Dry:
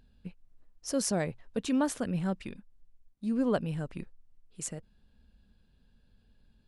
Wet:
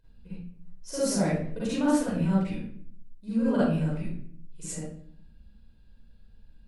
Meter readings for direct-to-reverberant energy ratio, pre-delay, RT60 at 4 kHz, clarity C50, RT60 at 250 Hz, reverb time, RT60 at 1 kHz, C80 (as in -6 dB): -10.0 dB, 37 ms, 0.45 s, -5.0 dB, 0.85 s, 0.55 s, 0.50 s, 3.0 dB